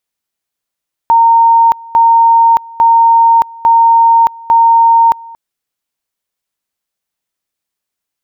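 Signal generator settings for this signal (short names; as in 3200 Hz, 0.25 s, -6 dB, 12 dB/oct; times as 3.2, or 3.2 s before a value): two-level tone 920 Hz -3.5 dBFS, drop 24 dB, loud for 0.62 s, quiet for 0.23 s, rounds 5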